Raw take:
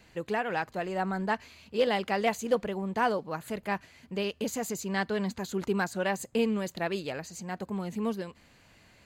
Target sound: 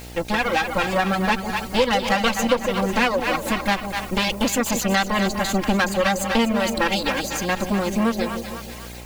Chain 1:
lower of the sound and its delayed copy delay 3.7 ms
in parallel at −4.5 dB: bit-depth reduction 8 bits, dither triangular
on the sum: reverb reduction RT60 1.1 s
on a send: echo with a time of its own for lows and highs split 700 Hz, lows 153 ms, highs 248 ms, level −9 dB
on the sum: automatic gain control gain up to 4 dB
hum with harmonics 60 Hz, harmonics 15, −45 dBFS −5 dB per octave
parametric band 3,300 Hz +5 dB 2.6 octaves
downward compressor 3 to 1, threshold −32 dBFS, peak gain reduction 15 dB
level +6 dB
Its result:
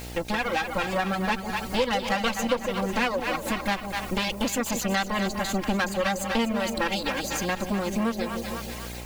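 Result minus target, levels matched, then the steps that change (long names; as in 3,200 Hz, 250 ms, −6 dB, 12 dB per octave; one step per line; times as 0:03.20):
downward compressor: peak gain reduction +5.5 dB
change: downward compressor 3 to 1, threshold −23.5 dBFS, peak gain reduction 9 dB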